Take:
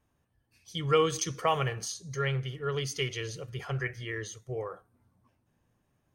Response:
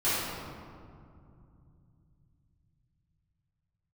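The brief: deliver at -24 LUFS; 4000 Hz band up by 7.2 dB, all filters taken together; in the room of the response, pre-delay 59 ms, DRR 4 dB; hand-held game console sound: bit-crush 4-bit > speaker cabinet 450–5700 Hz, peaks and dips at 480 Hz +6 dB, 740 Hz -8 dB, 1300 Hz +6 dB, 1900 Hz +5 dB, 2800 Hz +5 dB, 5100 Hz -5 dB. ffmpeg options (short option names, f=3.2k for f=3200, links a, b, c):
-filter_complex "[0:a]equalizer=f=4k:t=o:g=6.5,asplit=2[a][b];[1:a]atrim=start_sample=2205,adelay=59[c];[b][c]afir=irnorm=-1:irlink=0,volume=-16.5dB[d];[a][d]amix=inputs=2:normalize=0,acrusher=bits=3:mix=0:aa=0.000001,highpass=450,equalizer=f=480:t=q:w=4:g=6,equalizer=f=740:t=q:w=4:g=-8,equalizer=f=1.3k:t=q:w=4:g=6,equalizer=f=1.9k:t=q:w=4:g=5,equalizer=f=2.8k:t=q:w=4:g=5,equalizer=f=5.1k:t=q:w=4:g=-5,lowpass=f=5.7k:w=0.5412,lowpass=f=5.7k:w=1.3066,volume=2dB"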